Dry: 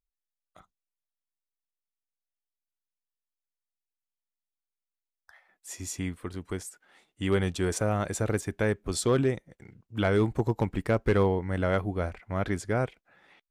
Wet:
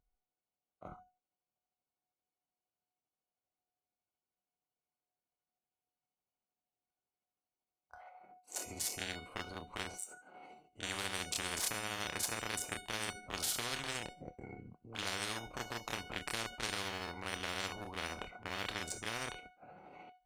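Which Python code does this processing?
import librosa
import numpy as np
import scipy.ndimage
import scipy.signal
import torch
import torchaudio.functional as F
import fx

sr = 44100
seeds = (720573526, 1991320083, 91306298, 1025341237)

y = fx.wiener(x, sr, points=25)
y = fx.highpass(y, sr, hz=84.0, slope=6)
y = fx.comb_fb(y, sr, f0_hz=740.0, decay_s=0.22, harmonics='all', damping=0.0, mix_pct=90)
y = fx.stretch_grains(y, sr, factor=1.5, grain_ms=157.0)
y = fx.spectral_comp(y, sr, ratio=10.0)
y = y * 10.0 ** (9.0 / 20.0)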